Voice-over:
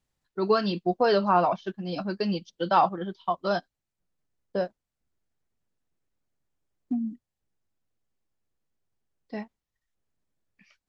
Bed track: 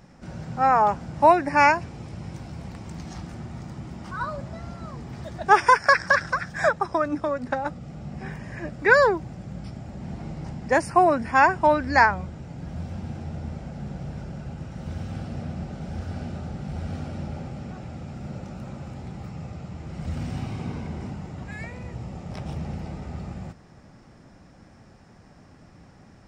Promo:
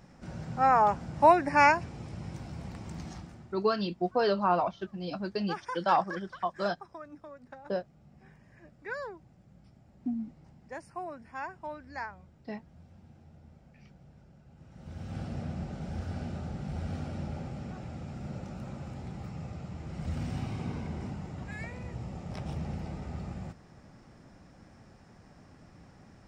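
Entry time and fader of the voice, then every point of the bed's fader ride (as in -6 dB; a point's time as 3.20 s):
3.15 s, -4.5 dB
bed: 3.06 s -4 dB
3.71 s -21.5 dB
14.47 s -21.5 dB
15.20 s -4 dB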